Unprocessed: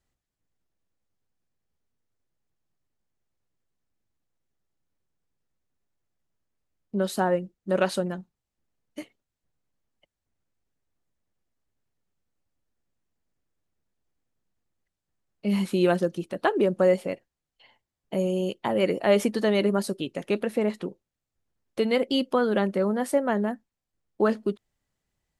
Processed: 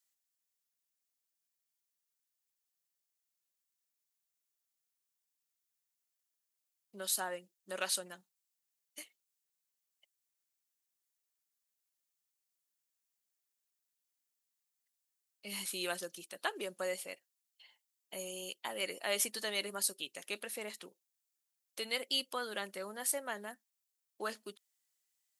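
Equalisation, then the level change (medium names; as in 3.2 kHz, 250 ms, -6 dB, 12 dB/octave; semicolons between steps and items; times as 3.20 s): differentiator; +4.5 dB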